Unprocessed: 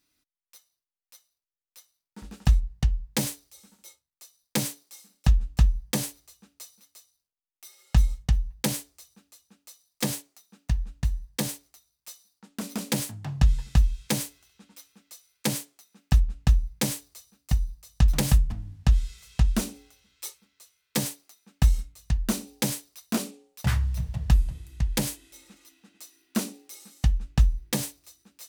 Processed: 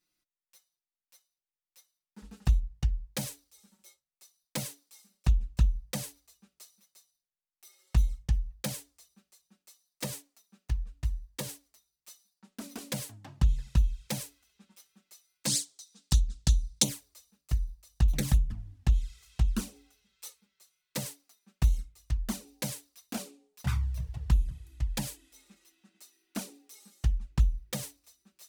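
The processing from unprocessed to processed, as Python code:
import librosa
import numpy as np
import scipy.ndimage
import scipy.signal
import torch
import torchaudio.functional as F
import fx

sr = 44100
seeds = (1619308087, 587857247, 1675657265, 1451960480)

y = fx.band_shelf(x, sr, hz=5600.0, db=15.0, octaves=1.7, at=(15.46, 16.83), fade=0.02)
y = fx.env_flanger(y, sr, rest_ms=5.6, full_db=-15.5)
y = F.gain(torch.from_numpy(y), -4.5).numpy()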